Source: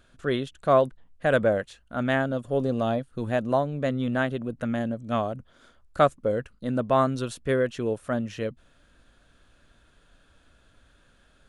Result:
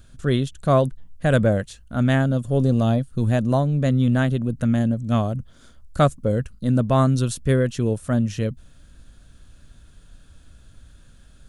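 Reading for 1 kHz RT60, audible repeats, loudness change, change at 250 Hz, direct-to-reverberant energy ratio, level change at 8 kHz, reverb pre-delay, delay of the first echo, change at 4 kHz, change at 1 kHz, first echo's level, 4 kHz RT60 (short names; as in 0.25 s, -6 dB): none, none, +5.0 dB, +7.5 dB, none, +10.0 dB, none, none, +4.0 dB, 0.0 dB, none, none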